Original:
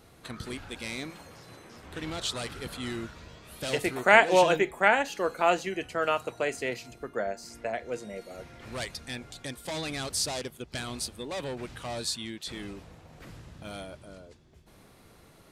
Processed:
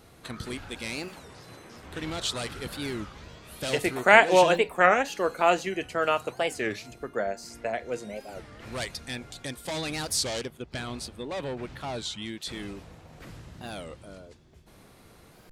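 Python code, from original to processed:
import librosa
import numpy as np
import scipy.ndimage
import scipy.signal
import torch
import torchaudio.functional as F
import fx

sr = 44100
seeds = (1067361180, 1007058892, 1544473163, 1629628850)

y = fx.high_shelf(x, sr, hz=4700.0, db=-10.5, at=(10.45, 12.22))
y = fx.record_warp(y, sr, rpm=33.33, depth_cents=250.0)
y = F.gain(torch.from_numpy(y), 2.0).numpy()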